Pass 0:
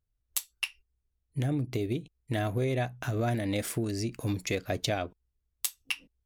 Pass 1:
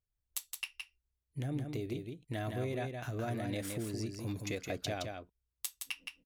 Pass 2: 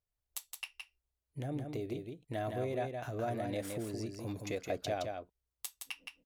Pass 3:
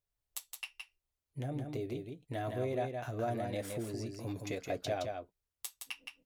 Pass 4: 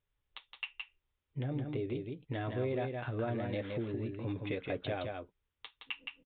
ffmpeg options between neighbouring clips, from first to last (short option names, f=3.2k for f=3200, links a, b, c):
-af "aecho=1:1:167:0.562,volume=-8dB"
-af "equalizer=f=630:t=o:w=1.5:g=8,volume=-3.5dB"
-af "flanger=delay=7.1:depth=1.5:regen=-48:speed=0.45:shape=sinusoidal,volume=4dB"
-filter_complex "[0:a]equalizer=f=680:t=o:w=0.22:g=-11.5,asplit=2[a][b];[b]acompressor=threshold=-47dB:ratio=6,volume=1dB[c];[a][c]amix=inputs=2:normalize=0,aresample=8000,aresample=44100"